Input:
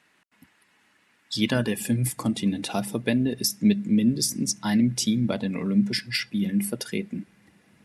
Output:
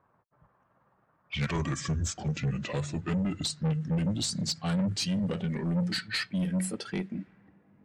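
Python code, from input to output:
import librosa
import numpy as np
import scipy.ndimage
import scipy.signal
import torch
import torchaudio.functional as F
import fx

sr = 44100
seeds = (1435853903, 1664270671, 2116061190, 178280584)

y = fx.pitch_glide(x, sr, semitones=-9.0, runs='ending unshifted')
y = 10.0 ** (-24.5 / 20.0) * np.tanh(y / 10.0 ** (-24.5 / 20.0))
y = fx.env_lowpass(y, sr, base_hz=970.0, full_db=-25.5)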